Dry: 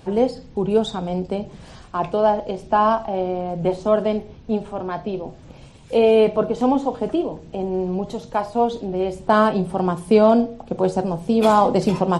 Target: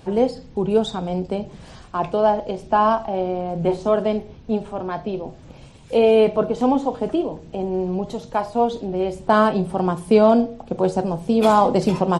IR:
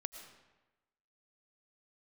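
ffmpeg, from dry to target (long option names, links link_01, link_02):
-filter_complex "[0:a]asplit=3[link_01][link_02][link_03];[link_01]afade=type=out:start_time=3.54:duration=0.02[link_04];[link_02]asplit=2[link_05][link_06];[link_06]adelay=35,volume=-9dB[link_07];[link_05][link_07]amix=inputs=2:normalize=0,afade=type=in:start_time=3.54:duration=0.02,afade=type=out:start_time=3.95:duration=0.02[link_08];[link_03]afade=type=in:start_time=3.95:duration=0.02[link_09];[link_04][link_08][link_09]amix=inputs=3:normalize=0"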